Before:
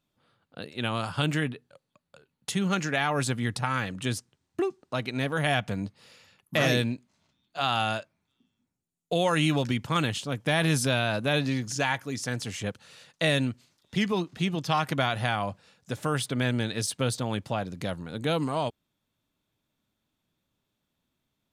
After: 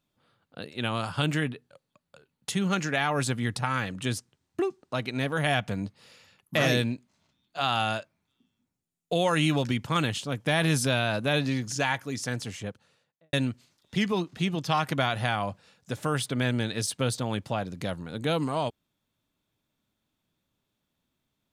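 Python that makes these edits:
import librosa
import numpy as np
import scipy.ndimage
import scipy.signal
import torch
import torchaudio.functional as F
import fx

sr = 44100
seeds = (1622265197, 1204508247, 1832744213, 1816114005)

y = fx.studio_fade_out(x, sr, start_s=12.26, length_s=1.07)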